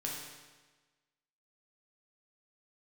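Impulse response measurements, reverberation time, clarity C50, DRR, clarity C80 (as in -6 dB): 1.3 s, 1.0 dB, -3.0 dB, 3.5 dB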